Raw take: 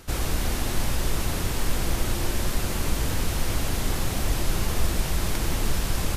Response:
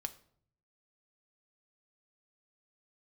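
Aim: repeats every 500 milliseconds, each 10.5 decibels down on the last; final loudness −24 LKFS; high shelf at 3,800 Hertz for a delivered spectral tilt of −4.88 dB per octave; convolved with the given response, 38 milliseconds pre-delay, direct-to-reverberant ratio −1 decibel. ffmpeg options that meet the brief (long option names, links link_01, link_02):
-filter_complex "[0:a]highshelf=frequency=3800:gain=-7,aecho=1:1:500|1000|1500:0.299|0.0896|0.0269,asplit=2[link_01][link_02];[1:a]atrim=start_sample=2205,adelay=38[link_03];[link_02][link_03]afir=irnorm=-1:irlink=0,volume=2.5dB[link_04];[link_01][link_04]amix=inputs=2:normalize=0,volume=1.5dB"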